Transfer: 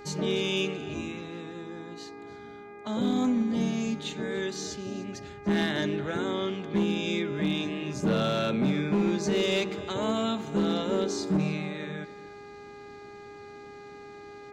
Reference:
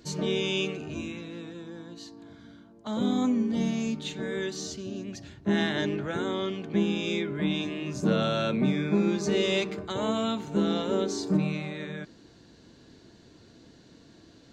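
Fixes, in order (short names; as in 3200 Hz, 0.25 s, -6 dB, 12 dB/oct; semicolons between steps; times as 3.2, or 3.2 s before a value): clip repair -20 dBFS; de-hum 408.5 Hz, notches 6; inverse comb 0.293 s -18.5 dB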